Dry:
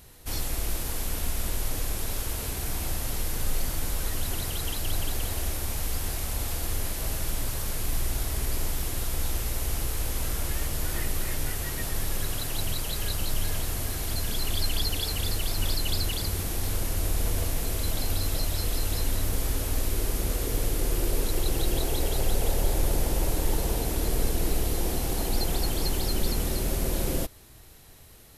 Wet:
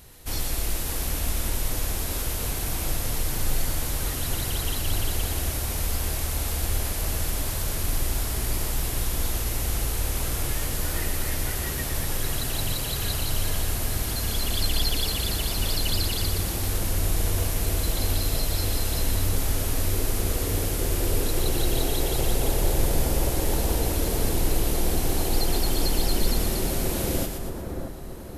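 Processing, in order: split-band echo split 1700 Hz, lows 0.627 s, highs 0.119 s, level -6 dB; gain +2 dB

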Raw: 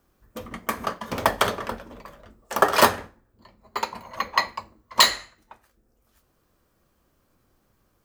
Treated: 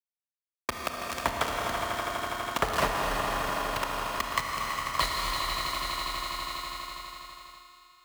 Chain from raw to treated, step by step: one-sided fold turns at -8.5 dBFS; LPF 3400 Hz 12 dB/oct; sample gate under -18.5 dBFS; frequency shift +32 Hz; low shelf 130 Hz +10 dB; swelling echo 82 ms, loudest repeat 5, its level -15 dB; gate with hold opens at -49 dBFS; Schroeder reverb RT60 3.1 s, combs from 25 ms, DRR 2 dB; compressor 2.5:1, threshold -36 dBFS, peak gain reduction 16.5 dB; gain +5 dB

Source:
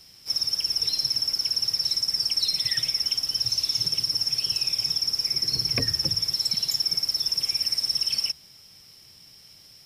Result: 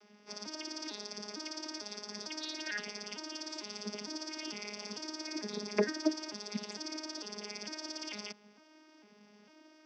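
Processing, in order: arpeggiated vocoder bare fifth, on G#3, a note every 0.451 s; three-band isolator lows -21 dB, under 220 Hz, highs -20 dB, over 2500 Hz; gain -1 dB

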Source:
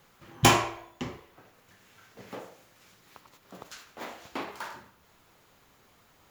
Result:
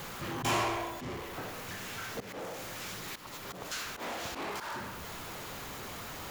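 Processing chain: auto swell 0.377 s; power-law curve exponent 0.5

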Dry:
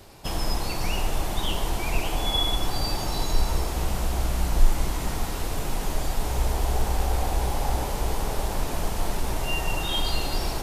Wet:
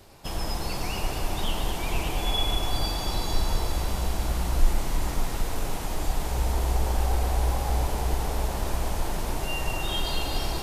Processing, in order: echo with dull and thin repeats by turns 0.113 s, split 2400 Hz, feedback 83%, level -4.5 dB; gain -3.5 dB

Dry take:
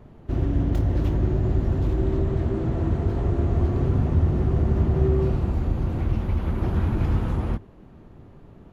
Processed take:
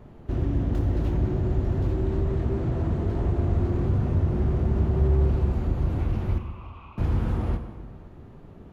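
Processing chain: in parallel at -3 dB: compressor, threshold -27 dBFS, peak gain reduction 12.5 dB; 6.38–6.98 on the sum: double band-pass 1700 Hz, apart 1.2 oct; plate-style reverb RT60 1.7 s, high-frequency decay 0.65×, DRR 7 dB; slew limiter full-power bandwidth 32 Hz; gain -4.5 dB

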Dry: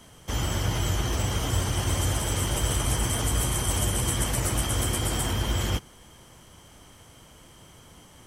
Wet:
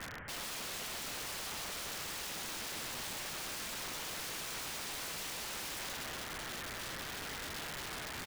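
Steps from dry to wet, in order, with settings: CVSD 16 kbps; reverse; compressor 4:1, threshold -40 dBFS, peak gain reduction 15.5 dB; reverse; synth low-pass 1800 Hz, resonance Q 3.5; in parallel at -6 dB: hard clip -40 dBFS, distortion -9 dB; on the sum: dynamic EQ 1400 Hz, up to +4 dB, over -56 dBFS, Q 7.1; feedback echo 0.128 s, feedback 43%, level -4.5 dB; wrapped overs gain 39 dB; gain +2 dB

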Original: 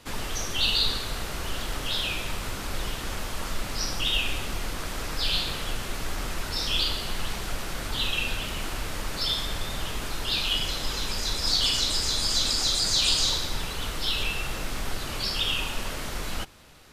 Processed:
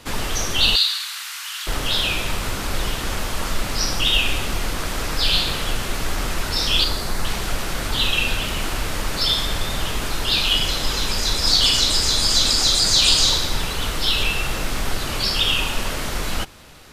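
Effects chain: 0.76–1.67 Bessel high-pass 1800 Hz, order 8; 6.84–7.25 bell 3000 Hz -12 dB 0.51 oct; gain +7.5 dB

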